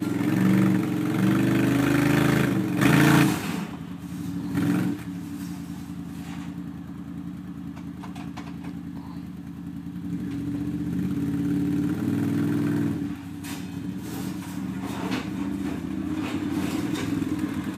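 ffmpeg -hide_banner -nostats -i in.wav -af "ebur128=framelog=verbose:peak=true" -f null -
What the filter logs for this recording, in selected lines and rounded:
Integrated loudness:
  I:         -26.2 LUFS
  Threshold: -36.5 LUFS
Loudness range:
  LRA:        14.4 LU
  Threshold: -47.1 LUFS
  LRA low:   -36.1 LUFS
  LRA high:  -21.8 LUFS
True peak:
  Peak:       -5.8 dBFS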